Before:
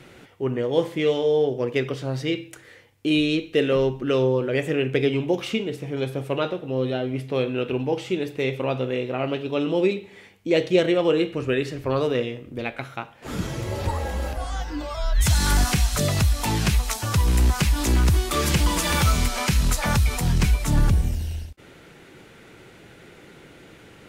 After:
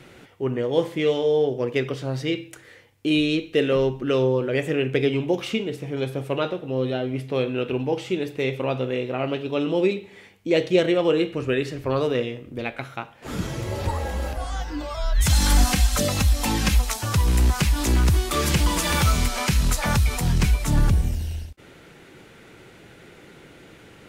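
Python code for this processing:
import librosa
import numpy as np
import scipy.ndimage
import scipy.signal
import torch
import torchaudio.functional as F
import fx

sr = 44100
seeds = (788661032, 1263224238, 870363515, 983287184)

y = fx.comb(x, sr, ms=3.8, depth=0.65, at=(15.29, 16.85))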